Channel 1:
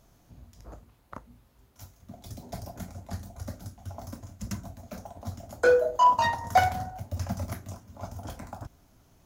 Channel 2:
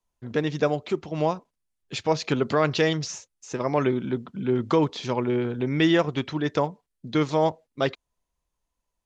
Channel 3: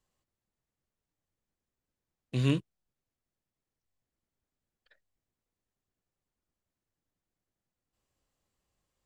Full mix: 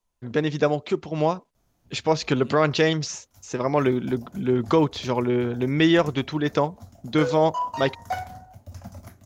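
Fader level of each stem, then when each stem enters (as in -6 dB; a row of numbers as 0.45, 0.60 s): -8.0, +2.0, -18.5 dB; 1.55, 0.00, 0.00 s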